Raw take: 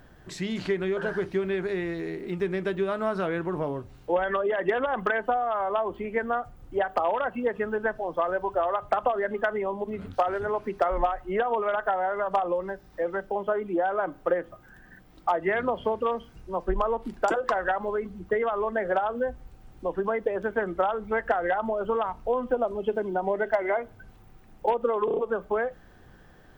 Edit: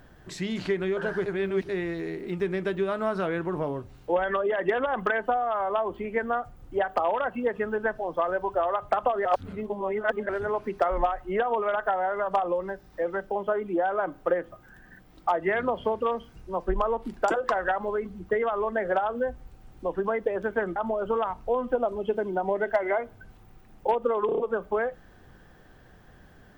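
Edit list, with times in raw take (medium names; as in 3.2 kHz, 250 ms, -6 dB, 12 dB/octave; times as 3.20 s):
1.26–1.69 s: reverse
9.25–10.29 s: reverse
20.76–21.55 s: delete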